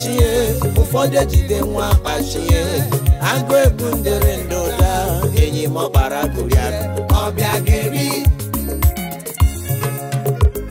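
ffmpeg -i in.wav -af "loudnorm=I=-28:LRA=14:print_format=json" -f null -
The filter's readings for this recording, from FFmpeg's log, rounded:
"input_i" : "-17.4",
"input_tp" : "-2.9",
"input_lra" : "2.7",
"input_thresh" : "-27.4",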